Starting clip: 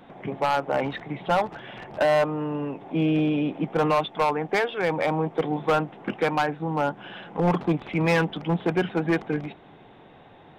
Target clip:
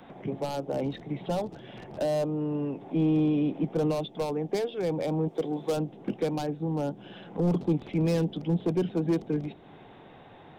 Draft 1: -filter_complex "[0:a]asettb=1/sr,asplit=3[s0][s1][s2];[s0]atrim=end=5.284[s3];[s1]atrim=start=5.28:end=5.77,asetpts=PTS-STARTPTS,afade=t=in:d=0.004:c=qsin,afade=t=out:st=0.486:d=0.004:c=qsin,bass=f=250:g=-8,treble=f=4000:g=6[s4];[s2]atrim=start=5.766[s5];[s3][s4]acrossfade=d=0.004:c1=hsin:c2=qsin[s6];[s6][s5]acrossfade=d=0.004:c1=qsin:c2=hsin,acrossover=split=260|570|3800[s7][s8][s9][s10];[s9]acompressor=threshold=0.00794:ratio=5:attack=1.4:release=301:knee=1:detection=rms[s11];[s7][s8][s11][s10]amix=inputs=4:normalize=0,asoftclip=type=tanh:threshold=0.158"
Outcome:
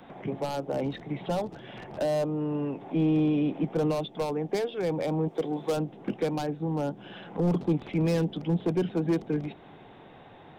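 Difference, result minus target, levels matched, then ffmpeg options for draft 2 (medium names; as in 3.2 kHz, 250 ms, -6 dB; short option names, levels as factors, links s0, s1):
compression: peak gain reduction -5 dB
-filter_complex "[0:a]asettb=1/sr,asplit=3[s0][s1][s2];[s0]atrim=end=5.284[s3];[s1]atrim=start=5.28:end=5.77,asetpts=PTS-STARTPTS,afade=t=in:d=0.004:c=qsin,afade=t=out:st=0.486:d=0.004:c=qsin,bass=f=250:g=-8,treble=f=4000:g=6[s4];[s2]atrim=start=5.766[s5];[s3][s4]acrossfade=d=0.004:c1=hsin:c2=qsin[s6];[s6][s5]acrossfade=d=0.004:c1=qsin:c2=hsin,acrossover=split=260|570|3800[s7][s8][s9][s10];[s9]acompressor=threshold=0.00376:ratio=5:attack=1.4:release=301:knee=1:detection=rms[s11];[s7][s8][s11][s10]amix=inputs=4:normalize=0,asoftclip=type=tanh:threshold=0.158"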